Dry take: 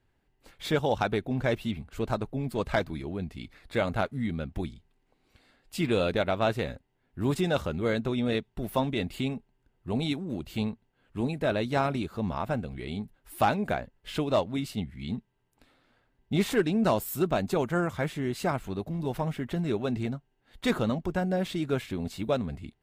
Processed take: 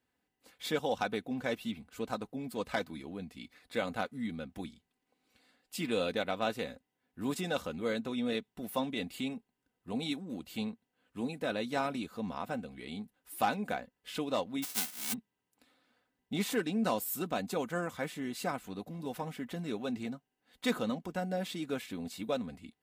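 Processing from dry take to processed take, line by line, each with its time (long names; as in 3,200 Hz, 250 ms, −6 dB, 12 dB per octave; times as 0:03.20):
0:14.62–0:15.12: spectral envelope flattened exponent 0.1
whole clip: Bessel high-pass filter 150 Hz, order 2; high-shelf EQ 4,000 Hz +6.5 dB; comb filter 4 ms, depth 48%; level −7 dB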